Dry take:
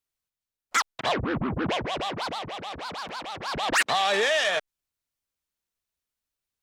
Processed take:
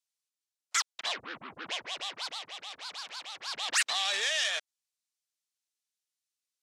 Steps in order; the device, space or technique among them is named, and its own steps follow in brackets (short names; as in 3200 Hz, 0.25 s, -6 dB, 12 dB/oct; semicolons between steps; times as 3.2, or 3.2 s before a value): piezo pickup straight into a mixer (LPF 7000 Hz 12 dB/oct; differentiator); gain +5 dB